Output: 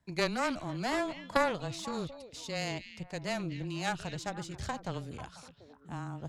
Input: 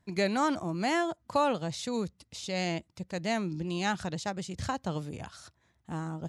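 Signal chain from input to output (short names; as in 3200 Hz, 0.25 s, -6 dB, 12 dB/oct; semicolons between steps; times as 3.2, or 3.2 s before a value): delay with a stepping band-pass 0.246 s, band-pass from 2900 Hz, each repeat -1.4 oct, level -7.5 dB; added harmonics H 2 -6 dB, 3 -13 dB, 5 -24 dB, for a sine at -14 dBFS; frequency shift -15 Hz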